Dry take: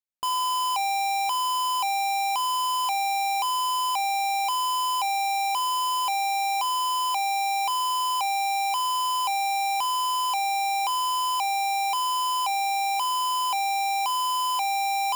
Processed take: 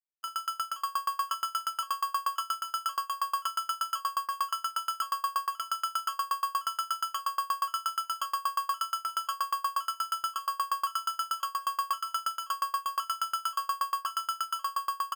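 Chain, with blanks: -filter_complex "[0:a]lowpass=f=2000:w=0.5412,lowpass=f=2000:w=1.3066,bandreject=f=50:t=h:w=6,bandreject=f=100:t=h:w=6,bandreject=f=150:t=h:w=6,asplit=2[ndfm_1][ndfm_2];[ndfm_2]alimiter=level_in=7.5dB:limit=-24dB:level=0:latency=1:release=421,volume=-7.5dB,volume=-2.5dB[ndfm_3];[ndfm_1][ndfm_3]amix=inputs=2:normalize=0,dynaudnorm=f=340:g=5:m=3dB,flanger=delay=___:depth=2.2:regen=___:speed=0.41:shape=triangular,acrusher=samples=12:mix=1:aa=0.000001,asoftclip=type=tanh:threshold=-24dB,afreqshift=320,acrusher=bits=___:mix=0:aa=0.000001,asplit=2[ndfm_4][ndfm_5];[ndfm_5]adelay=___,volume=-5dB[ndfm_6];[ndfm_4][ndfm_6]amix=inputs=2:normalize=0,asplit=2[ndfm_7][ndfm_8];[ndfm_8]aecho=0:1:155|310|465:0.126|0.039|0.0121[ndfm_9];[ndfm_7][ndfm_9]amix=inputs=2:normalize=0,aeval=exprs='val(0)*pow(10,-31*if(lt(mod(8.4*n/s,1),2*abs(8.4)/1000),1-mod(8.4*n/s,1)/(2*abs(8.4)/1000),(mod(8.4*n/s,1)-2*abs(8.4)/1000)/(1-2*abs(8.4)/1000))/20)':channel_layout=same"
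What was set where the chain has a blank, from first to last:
7.1, -77, 10, 46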